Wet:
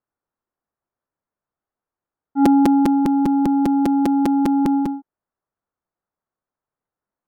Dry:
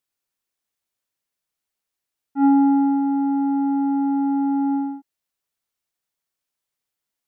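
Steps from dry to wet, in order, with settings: low-pass 1.4 kHz 24 dB/octave; compression 1.5:1, threshold -23 dBFS, peak gain reduction 4 dB; crackling interface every 0.20 s, samples 256, repeat; trim +5 dB

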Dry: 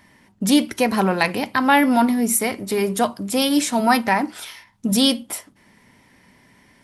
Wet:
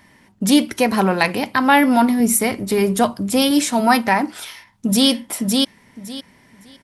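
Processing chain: 2.20–3.51 s: bass shelf 160 Hz +8.5 dB; 4.44–5.08 s: echo throw 560 ms, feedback 20%, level -2.5 dB; trim +2 dB

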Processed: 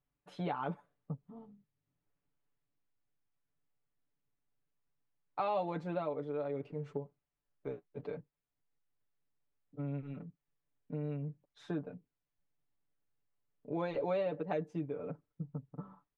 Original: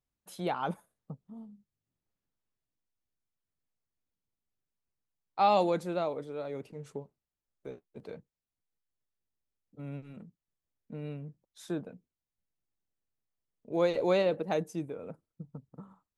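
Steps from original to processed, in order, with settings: low-pass 2.5 kHz 12 dB/octave; comb 6.9 ms, depth 76%; compression 2.5:1, threshold -37 dBFS, peak gain reduction 11.5 dB; trim +1 dB

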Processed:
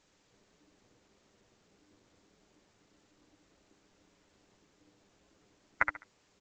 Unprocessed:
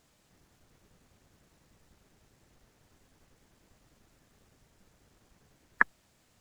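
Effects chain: feedback delay 69 ms, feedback 24%, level -6 dB; flange 1.7 Hz, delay 7.8 ms, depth 3.6 ms, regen -4%; ring modulator 300 Hz; A-law 128 kbps 16 kHz

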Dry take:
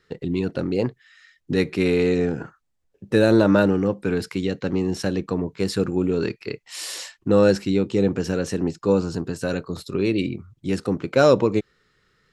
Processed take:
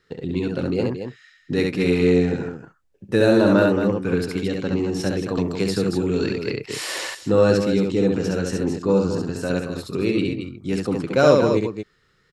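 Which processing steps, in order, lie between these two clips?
on a send: loudspeakers at several distances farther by 23 m -3 dB, 77 m -8 dB; 5.37–7.15 s: on the sum: three bands compressed up and down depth 70%; trim -1 dB

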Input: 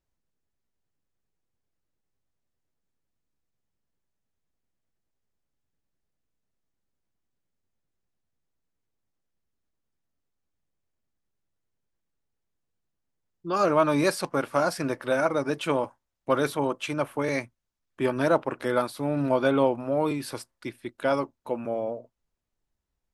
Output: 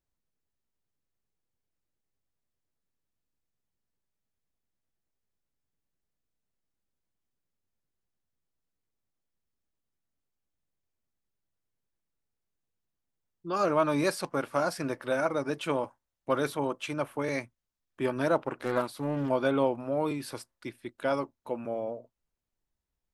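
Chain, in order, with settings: 18.46–19.30 s: loudspeaker Doppler distortion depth 0.38 ms; trim -4 dB

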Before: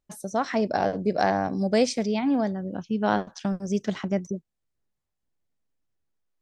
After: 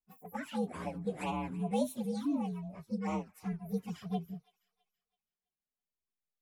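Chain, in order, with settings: frequency axis rescaled in octaves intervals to 122%; touch-sensitive flanger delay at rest 4.9 ms, full sweep at -22 dBFS; feedback echo behind a high-pass 329 ms, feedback 35%, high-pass 1.5 kHz, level -18.5 dB; trim -7 dB

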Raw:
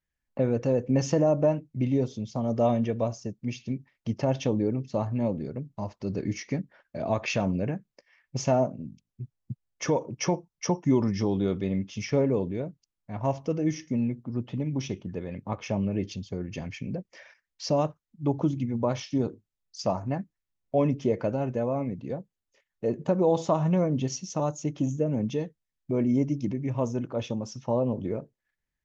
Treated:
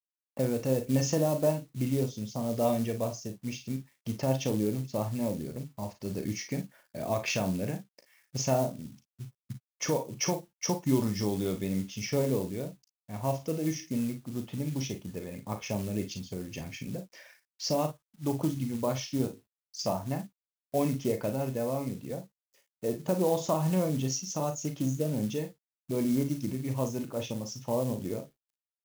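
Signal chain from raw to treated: companded quantiser 6-bit; treble shelf 4.4 kHz +10 dB; early reflections 38 ms -9 dB, 53 ms -12 dB; trim -4.5 dB

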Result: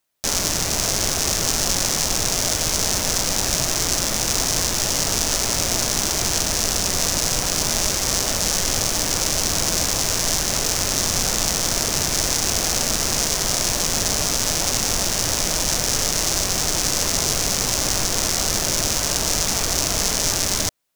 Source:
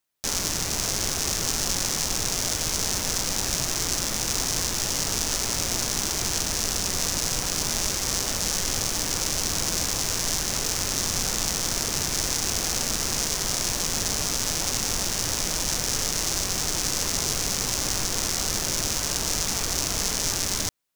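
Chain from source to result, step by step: peaking EQ 630 Hz +4 dB 0.48 oct; trim +5 dB

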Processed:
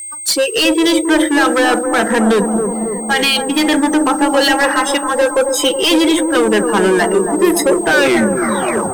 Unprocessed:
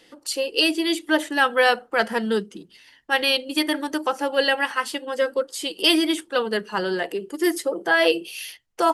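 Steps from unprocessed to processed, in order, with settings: tape stop on the ending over 1.07 s; peak limiter -14.5 dBFS, peak gain reduction 10 dB; spectral noise reduction 24 dB; whistle 8.4 kHz -41 dBFS; waveshaping leveller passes 3; on a send: bucket-brigade echo 273 ms, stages 2048, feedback 67%, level -5 dB; on the sum: trim +5.5 dB

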